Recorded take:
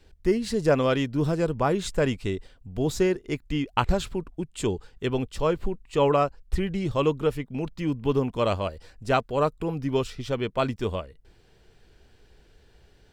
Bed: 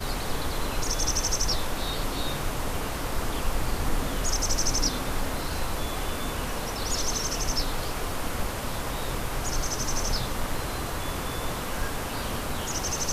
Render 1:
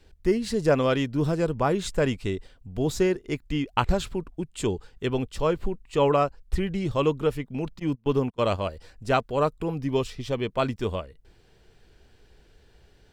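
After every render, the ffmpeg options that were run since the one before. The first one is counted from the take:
-filter_complex "[0:a]asplit=3[s0][s1][s2];[s0]afade=t=out:st=7.78:d=0.02[s3];[s1]agate=range=0.0501:threshold=0.0316:ratio=16:release=100:detection=peak,afade=t=in:st=7.78:d=0.02,afade=t=out:st=8.57:d=0.02[s4];[s2]afade=t=in:st=8.57:d=0.02[s5];[s3][s4][s5]amix=inputs=3:normalize=0,asettb=1/sr,asplit=3[s6][s7][s8];[s6]atrim=end=9.814[s9];[s7]atrim=start=9.81:end=10.48,asetpts=PTS-STARTPTS,afade=t=in:d=0.004:c=qsin,afade=t=out:st=0.666:d=0.004:c=qsin,bandreject=f=1400:w=5.9[s10];[s8]atrim=start=10.476[s11];[s9][s10]acrossfade=d=0.004:c1=hsin:c2=qsin[s12];[s12][s11]acrossfade=d=0.004:c1=qsin:c2=hsin"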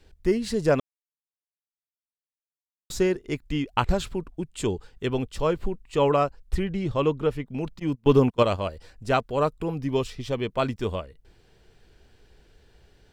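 -filter_complex "[0:a]asettb=1/sr,asplit=3[s0][s1][s2];[s0]atrim=end=6.634[s3];[s1]atrim=start=6.63:end=7.47,asetpts=PTS-STARTPTS,afade=t=in:d=0.004:c=qsin,afade=t=out:st=0.836:d=0.004:c=qsin,lowpass=f=4000:p=1[s4];[s2]atrim=start=7.466[s5];[s3][s4]acrossfade=d=0.004:c1=hsin:c2=qsin[s6];[s6][s5]acrossfade=d=0.004:c1=qsin:c2=hsin,asettb=1/sr,asplit=3[s7][s8][s9];[s7]atrim=end=8.034[s10];[s8]atrim=start=8.03:end=8.43,asetpts=PTS-STARTPTS,afade=t=in:d=0.004:c=qsin,afade=t=out:st=0.396:d=0.004:c=qsin,acontrast=64[s11];[s9]atrim=start=8.426[s12];[s10][s11]acrossfade=d=0.004:c1=hsin:c2=qsin[s13];[s13][s12]acrossfade=d=0.004:c1=qsin:c2=hsin,asplit=3[s14][s15][s16];[s14]atrim=end=0.8,asetpts=PTS-STARTPTS,afade=t=out:st=0.796:d=0.004:c=hsin[s17];[s15]atrim=start=0.8:end=2.9,asetpts=PTS-STARTPTS,volume=0[s18];[s16]atrim=start=2.9,asetpts=PTS-STARTPTS,afade=t=in:d=0.004:c=hsin[s19];[s17][s18][s19]concat=n=3:v=0:a=1"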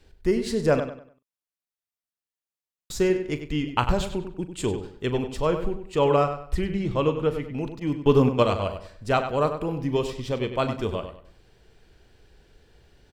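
-filter_complex "[0:a]asplit=2[s0][s1];[s1]adelay=40,volume=0.224[s2];[s0][s2]amix=inputs=2:normalize=0,asplit=2[s3][s4];[s4]adelay=97,lowpass=f=4600:p=1,volume=0.355,asplit=2[s5][s6];[s6]adelay=97,lowpass=f=4600:p=1,volume=0.32,asplit=2[s7][s8];[s8]adelay=97,lowpass=f=4600:p=1,volume=0.32,asplit=2[s9][s10];[s10]adelay=97,lowpass=f=4600:p=1,volume=0.32[s11];[s5][s7][s9][s11]amix=inputs=4:normalize=0[s12];[s3][s12]amix=inputs=2:normalize=0"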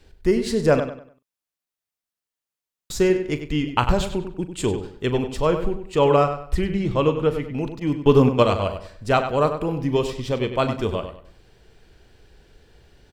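-af "volume=1.5,alimiter=limit=0.708:level=0:latency=1"

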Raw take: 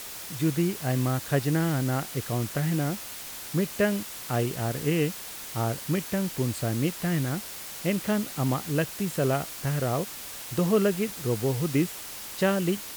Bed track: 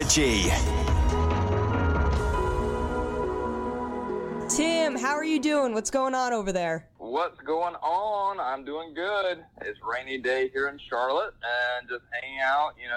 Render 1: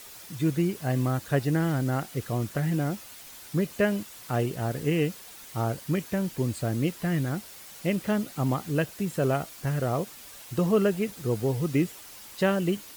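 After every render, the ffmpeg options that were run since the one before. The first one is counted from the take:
-af "afftdn=nr=8:nf=-40"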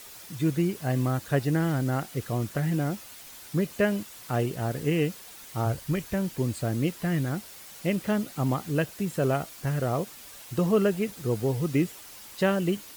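-filter_complex "[0:a]asplit=3[s0][s1][s2];[s0]afade=t=out:st=5.65:d=0.02[s3];[s1]asubboost=boost=4.5:cutoff=95,afade=t=in:st=5.65:d=0.02,afade=t=out:st=6.13:d=0.02[s4];[s2]afade=t=in:st=6.13:d=0.02[s5];[s3][s4][s5]amix=inputs=3:normalize=0"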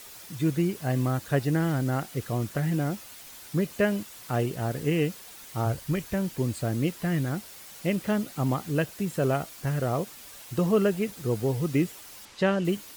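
-filter_complex "[0:a]asettb=1/sr,asplit=3[s0][s1][s2];[s0]atrim=end=12.254[s3];[s1]atrim=start=12.25:end=12.65,asetpts=PTS-STARTPTS,afade=t=in:d=0.004:c=qsin,afade=t=out:st=0.396:d=0.004:c=qsin,lowpass=6100[s4];[s2]atrim=start=12.646[s5];[s3][s4]acrossfade=d=0.004:c1=hsin:c2=qsin[s6];[s6][s5]acrossfade=d=0.004:c1=qsin:c2=hsin"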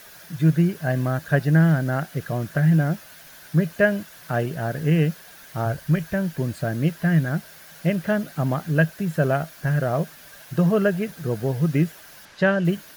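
-af "equalizer=f=160:t=o:w=0.33:g=12,equalizer=f=630:t=o:w=0.33:g=8,equalizer=f=1600:t=o:w=0.33:g=12,equalizer=f=8000:t=o:w=0.33:g=-7"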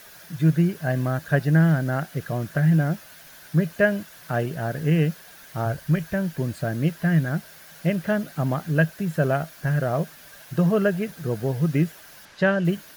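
-af "volume=0.891"

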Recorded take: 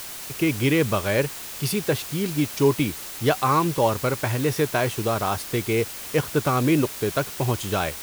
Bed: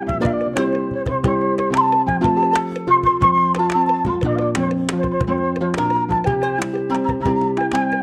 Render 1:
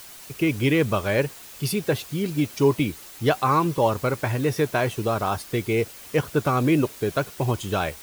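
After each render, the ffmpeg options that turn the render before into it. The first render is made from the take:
-af "afftdn=nr=8:nf=-36"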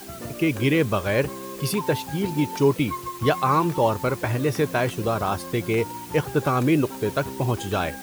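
-filter_complex "[1:a]volume=0.133[s0];[0:a][s0]amix=inputs=2:normalize=0"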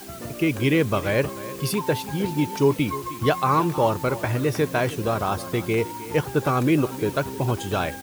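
-af "aecho=1:1:310:0.158"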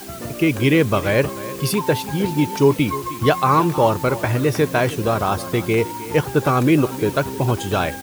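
-af "volume=1.68"

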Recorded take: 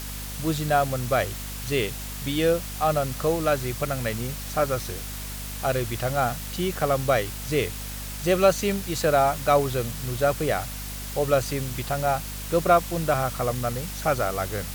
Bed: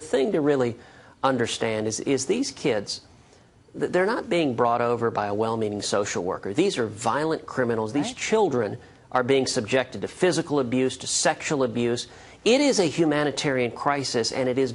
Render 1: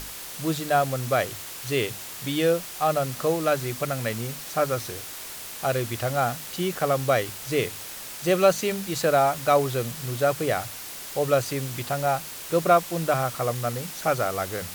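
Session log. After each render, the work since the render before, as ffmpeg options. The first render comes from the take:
-af "bandreject=f=50:t=h:w=6,bandreject=f=100:t=h:w=6,bandreject=f=150:t=h:w=6,bandreject=f=200:t=h:w=6,bandreject=f=250:t=h:w=6"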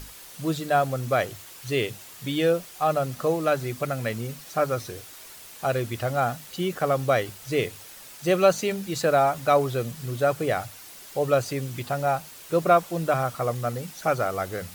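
-af "afftdn=nr=8:nf=-38"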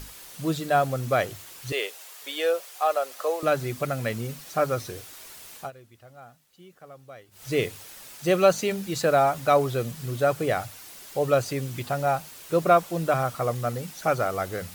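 -filter_complex "[0:a]asettb=1/sr,asplit=3[s0][s1][s2];[s0]atrim=end=1.724[s3];[s1]atrim=start=1.72:end=3.43,asetpts=PTS-STARTPTS,afade=t=in:d=0.004:c=qsin,afade=t=out:st=1.706:d=0.004:c=qsin,highpass=f=460:w=0.5412,highpass=f=460:w=1.3066[s4];[s2]atrim=start=3.426[s5];[s3][s4]acrossfade=d=0.004:c1=hsin:c2=qsin[s6];[s6][s5]acrossfade=d=0.004:c1=qsin:c2=hsin,asplit=3[s7][s8][s9];[s7]atrim=end=5.71,asetpts=PTS-STARTPTS,afade=t=out:st=5.56:d=0.15:silence=0.0707946[s10];[s8]atrim=start=5.71:end=7.31,asetpts=PTS-STARTPTS,volume=0.0708[s11];[s9]atrim=start=7.31,asetpts=PTS-STARTPTS,afade=t=in:d=0.15:silence=0.0707946[s12];[s10][s11][s12]concat=n=3:v=0:a=1"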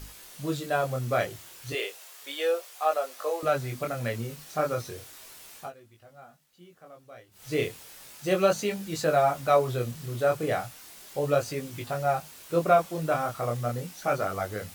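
-af "flanger=delay=19:depth=7.3:speed=0.34"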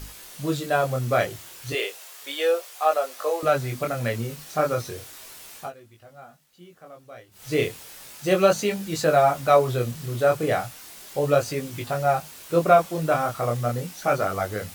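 -af "volume=1.68"

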